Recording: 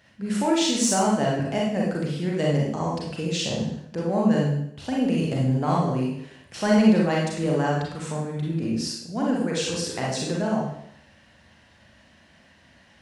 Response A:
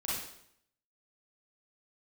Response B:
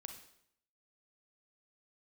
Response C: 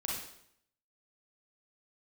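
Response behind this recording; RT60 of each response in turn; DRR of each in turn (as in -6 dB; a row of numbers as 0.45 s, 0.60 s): C; 0.70 s, 0.70 s, 0.70 s; -8.0 dB, 5.0 dB, -3.5 dB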